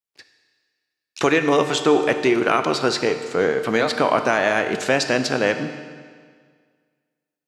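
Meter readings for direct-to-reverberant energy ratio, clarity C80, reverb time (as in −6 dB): 7.5 dB, 10.5 dB, 1.8 s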